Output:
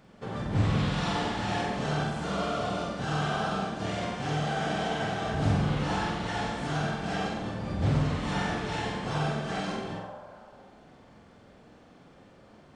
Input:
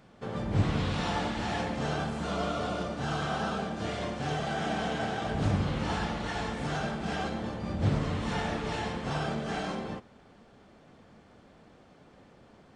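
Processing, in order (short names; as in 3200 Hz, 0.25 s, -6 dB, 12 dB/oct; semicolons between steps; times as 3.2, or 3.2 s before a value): spectral repair 9.96–10.81, 500–1700 Hz both; flutter echo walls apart 8 m, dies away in 0.63 s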